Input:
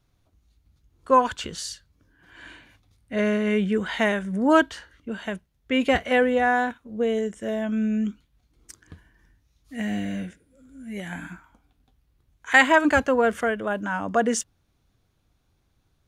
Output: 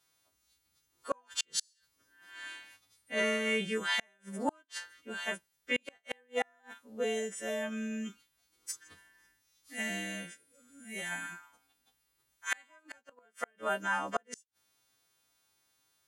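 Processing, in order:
every partial snapped to a pitch grid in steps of 2 semitones
high-pass filter 680 Hz 6 dB per octave
gate with flip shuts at −16 dBFS, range −39 dB
level −3 dB

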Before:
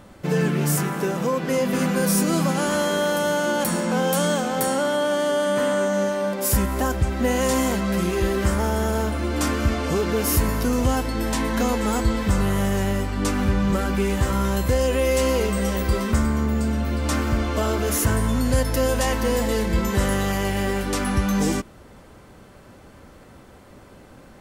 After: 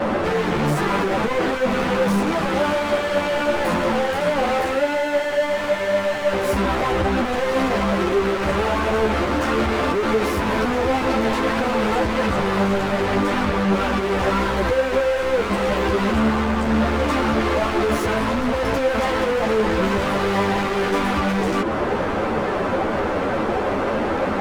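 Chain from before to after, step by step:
downward compressor, threshold −27 dBFS, peak gain reduction 12.5 dB
spectral tilt −3.5 dB per octave
pitch vibrato 0.55 Hz 13 cents
bass and treble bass −10 dB, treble 0 dB
mid-hump overdrive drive 37 dB, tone 1,400 Hz, clips at −15 dBFS
hard clipping −24.5 dBFS, distortion −12 dB
string-ensemble chorus
level +8.5 dB

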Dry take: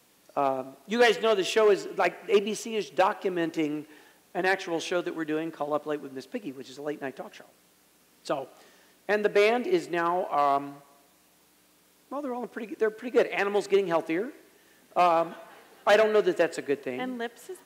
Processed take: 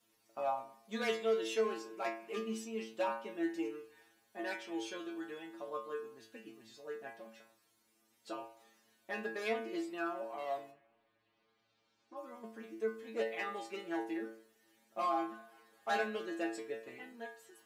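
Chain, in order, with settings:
0:10.70–0:12.15: low-pass filter 2,500 Hz → 6,400 Hz 24 dB per octave
stiff-string resonator 110 Hz, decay 0.53 s, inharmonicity 0.002
flanger 0.16 Hz, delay 0.6 ms, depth 3.7 ms, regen −82%
level +5 dB

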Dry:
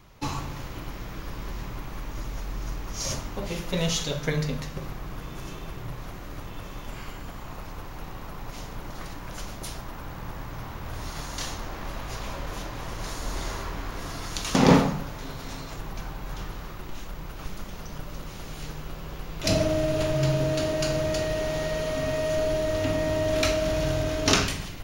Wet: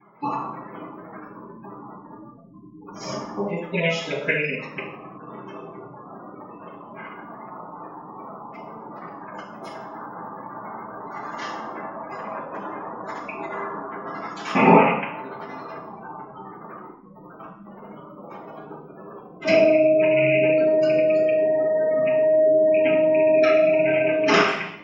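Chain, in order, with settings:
loose part that buzzes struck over −25 dBFS, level −13 dBFS
gate on every frequency bin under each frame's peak −20 dB strong
0:02.91–0:03.55: low-shelf EQ 210 Hz +7 dB
convolution reverb RT60 0.60 s, pre-delay 3 ms, DRR −21.5 dB
0:18.17–0:18.80: dynamic equaliser 800 Hz, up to +4 dB, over −38 dBFS, Q 0.97
level −13 dB

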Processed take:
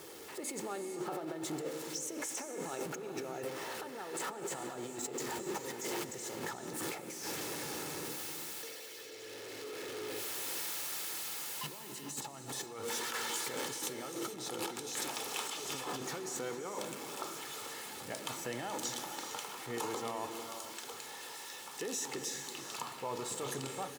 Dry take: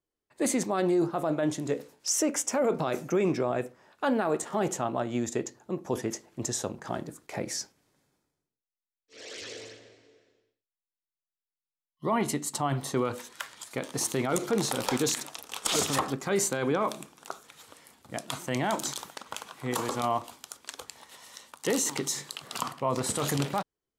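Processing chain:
converter with a step at zero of −33.5 dBFS
source passing by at 0:08.99, 18 m/s, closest 14 metres
compressor whose output falls as the input rises −50 dBFS, ratio −1
high-pass filter 160 Hz 12 dB per octave
comb filter 2.3 ms, depth 39%
reverb whose tail is shaped and stops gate 480 ms rising, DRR 7 dB
level +8 dB

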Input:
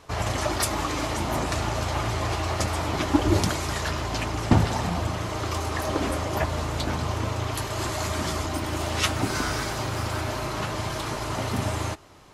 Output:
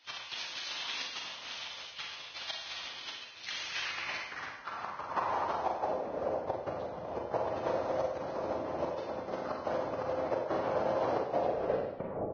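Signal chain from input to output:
turntable brake at the end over 1.38 s
gate pattern "x.xxxx.xxxx.xx" 90 BPM −24 dB
pitch-shifted copies added −3 semitones 0 dB, +5 semitones −7 dB
dynamic equaliser 130 Hz, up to +5 dB, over −37 dBFS, Q 1.4
compressor whose output falls as the input rises −28 dBFS, ratio −0.5
noise gate −36 dBFS, range −17 dB
band-pass filter sweep 3,300 Hz → 570 Hz, 0:03.50–0:05.96
on a send: backwards echo 505 ms −20 dB
on the sum: four-comb reverb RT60 0.81 s, combs from 33 ms, DRR 0 dB
Ogg Vorbis 16 kbit/s 16,000 Hz

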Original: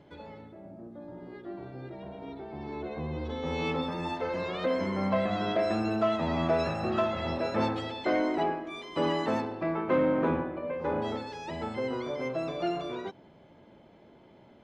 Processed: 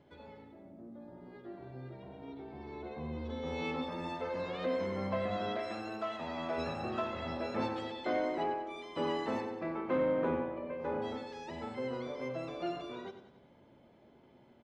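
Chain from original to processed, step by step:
0:05.56–0:06.58: low-shelf EQ 400 Hz −9.5 dB
repeating echo 94 ms, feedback 51%, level −11 dB
on a send at −11 dB: convolution reverb RT60 0.60 s, pre-delay 4 ms
on the sum: level −7 dB

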